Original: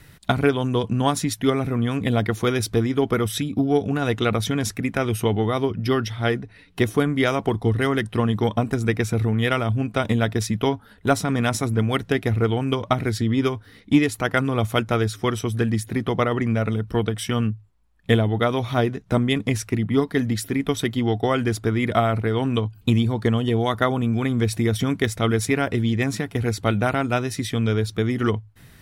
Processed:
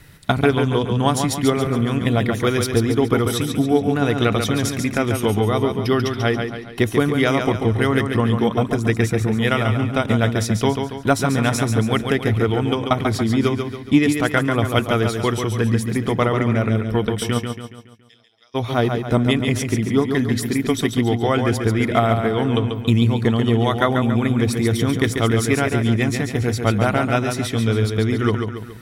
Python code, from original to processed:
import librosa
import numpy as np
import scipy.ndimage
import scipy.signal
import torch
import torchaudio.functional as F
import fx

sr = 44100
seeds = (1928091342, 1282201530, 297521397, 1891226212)

y = fx.bandpass_q(x, sr, hz=5100.0, q=18.0, at=(17.38, 18.54), fade=0.02)
y = fx.echo_feedback(y, sr, ms=140, feedback_pct=46, wet_db=-6)
y = F.gain(torch.from_numpy(y), 2.0).numpy()